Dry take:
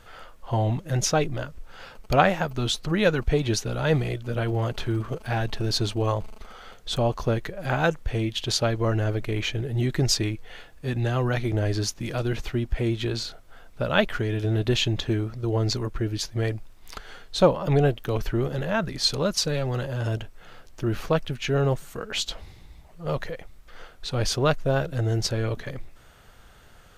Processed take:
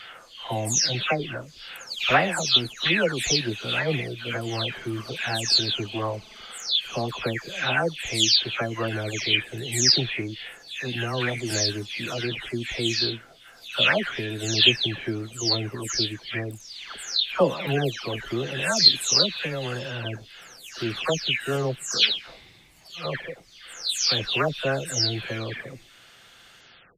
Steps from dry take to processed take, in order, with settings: delay that grows with frequency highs early, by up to 368 ms; frequency weighting D; trim -1 dB

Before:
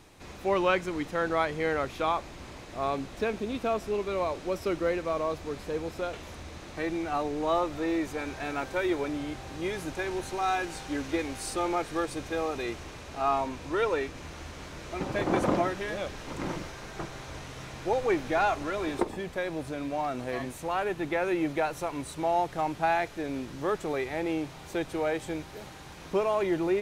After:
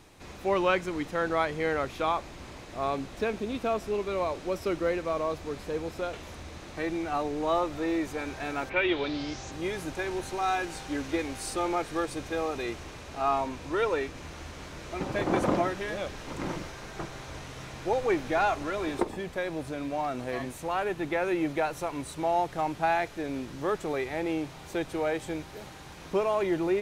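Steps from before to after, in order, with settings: 8.69–9.50 s: resonant low-pass 2.3 kHz -> 7 kHz

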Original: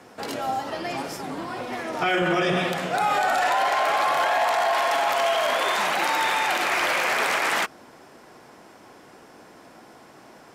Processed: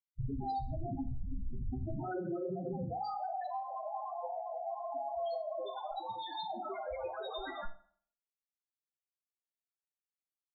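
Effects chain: Schmitt trigger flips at -26.5 dBFS; high-order bell 4.8 kHz +9 dB 1.2 oct; loudest bins only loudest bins 4; feedback comb 130 Hz, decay 0.18 s, harmonics all, mix 90%; compression 4:1, threshold -38 dBFS, peak gain reduction 8 dB; dynamic bell 970 Hz, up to -7 dB, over -57 dBFS, Q 3.7; reverberation RT60 0.55 s, pre-delay 5 ms, DRR 8.5 dB; trim +4.5 dB

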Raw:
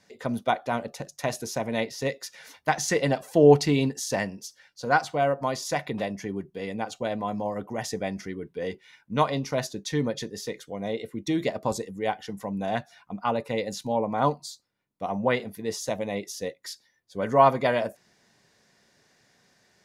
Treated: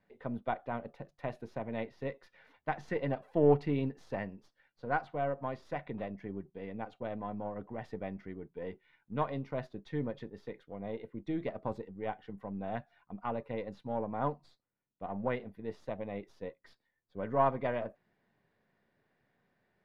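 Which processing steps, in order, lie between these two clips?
partial rectifier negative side -3 dB; distance through air 500 m; trim -7 dB

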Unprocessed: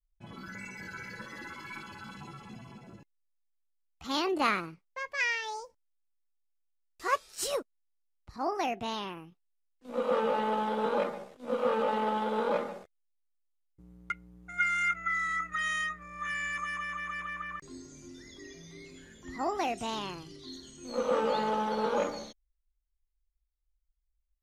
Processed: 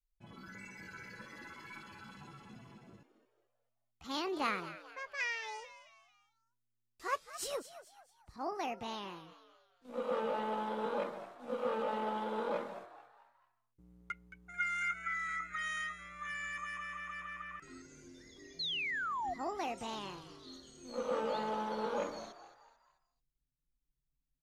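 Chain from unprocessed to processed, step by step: frequency-shifting echo 220 ms, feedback 41%, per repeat +120 Hz, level -14 dB; painted sound fall, 18.59–19.34 s, 670–4400 Hz -30 dBFS; trim -7 dB

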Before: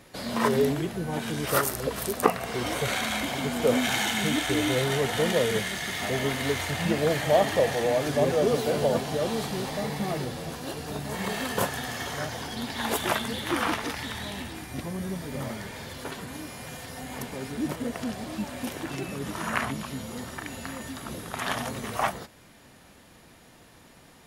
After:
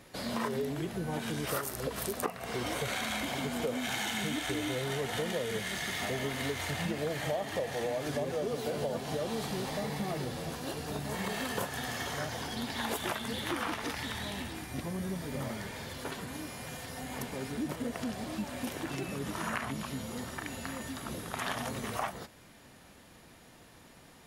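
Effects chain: compression, threshold -28 dBFS, peak gain reduction 14 dB; trim -2.5 dB

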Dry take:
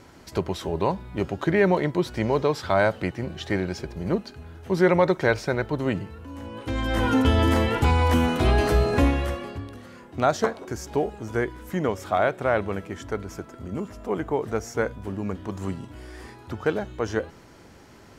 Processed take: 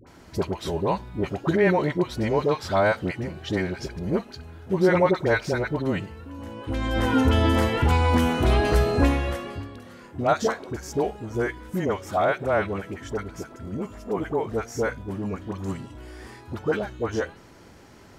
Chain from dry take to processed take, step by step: phase dispersion highs, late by 69 ms, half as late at 810 Hz

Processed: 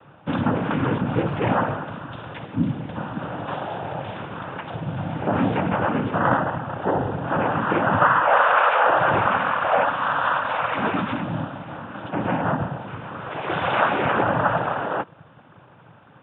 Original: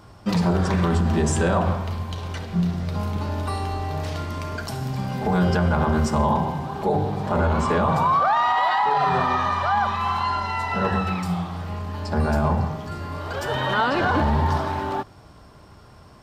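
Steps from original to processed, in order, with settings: peaking EQ 930 Hz +7 dB 0.24 oct; noise-vocoded speech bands 8; Chebyshev low-pass 3.6 kHz, order 8

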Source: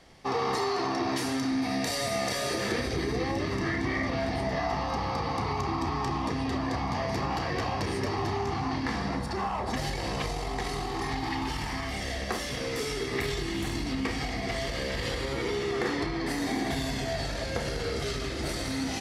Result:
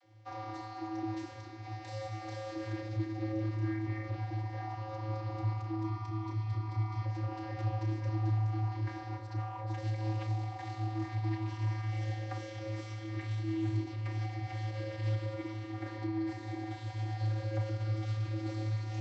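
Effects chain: 5.83–7.05 s: comb 0.9 ms, depth 75%; gain riding 0.5 s; vocoder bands 32, square 108 Hz; trim -4 dB

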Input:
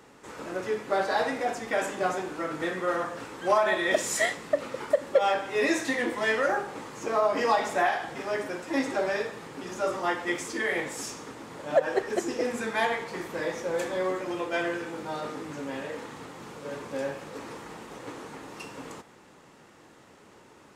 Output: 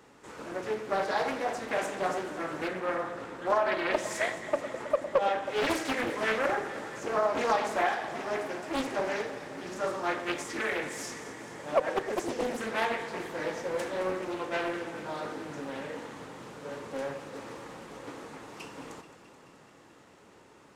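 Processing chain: 2.68–5.47 s: treble shelf 3.6 kHz -8 dB; echo whose repeats swap between lows and highs 108 ms, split 1.4 kHz, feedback 85%, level -12 dB; loudspeaker Doppler distortion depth 0.7 ms; trim -3 dB

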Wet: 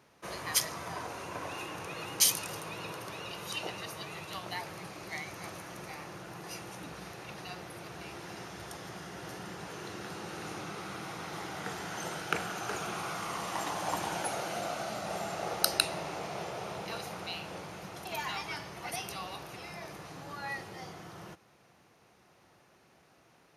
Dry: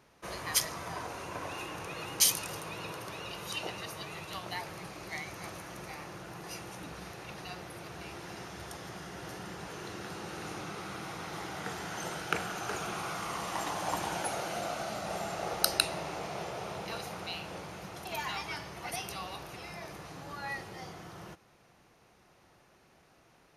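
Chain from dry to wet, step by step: high-pass 79 Hz

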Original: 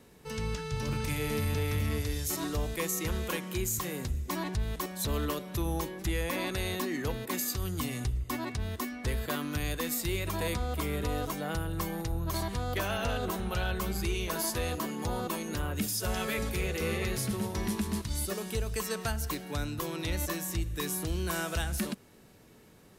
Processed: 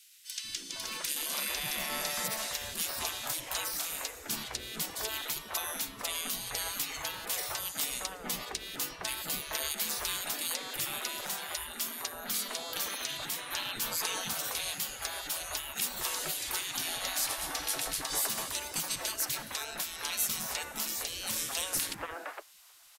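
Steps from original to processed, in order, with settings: spectral gate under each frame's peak -20 dB weak; three bands offset in time highs, lows, mids 190/460 ms, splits 350/2000 Hz; trim +9 dB

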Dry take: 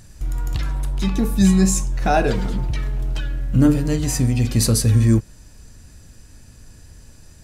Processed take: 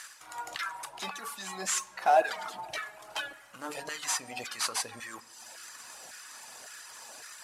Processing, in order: CVSD coder 64 kbps; reverb removal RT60 0.68 s; peak limiter -13.5 dBFS, peak gain reduction 8 dB; reverse; compression 6:1, threshold -31 dBFS, peak gain reduction 13.5 dB; reverse; LFO high-pass saw down 1.8 Hz 650–1500 Hz; on a send: reverberation RT60 2.4 s, pre-delay 6 ms, DRR 18 dB; on the sum: trim +7 dB

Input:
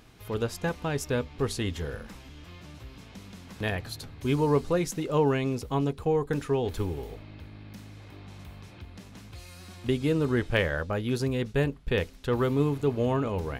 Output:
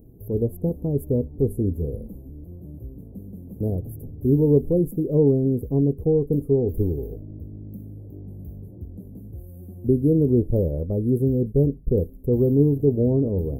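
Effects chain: inverse Chebyshev band-stop 1.8–4.6 kHz, stop band 80 dB; trim +8 dB

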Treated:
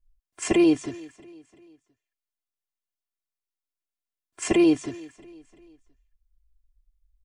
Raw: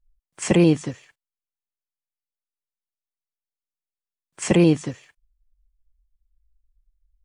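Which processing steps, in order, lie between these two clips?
peaking EQ 160 Hz -2.5 dB; comb 2.9 ms, depth 85%; feedback delay 342 ms, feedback 47%, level -22.5 dB; trim -5 dB

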